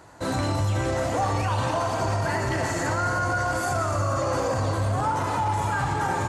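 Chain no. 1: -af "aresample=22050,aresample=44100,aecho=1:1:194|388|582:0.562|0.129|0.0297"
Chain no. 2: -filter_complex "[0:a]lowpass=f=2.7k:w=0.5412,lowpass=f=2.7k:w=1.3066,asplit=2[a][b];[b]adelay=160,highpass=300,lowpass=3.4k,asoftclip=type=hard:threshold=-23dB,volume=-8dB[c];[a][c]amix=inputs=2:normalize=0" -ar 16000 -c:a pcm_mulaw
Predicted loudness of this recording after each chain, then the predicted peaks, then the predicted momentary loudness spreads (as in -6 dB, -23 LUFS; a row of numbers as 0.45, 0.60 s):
-24.0, -25.0 LUFS; -10.5, -13.0 dBFS; 1, 2 LU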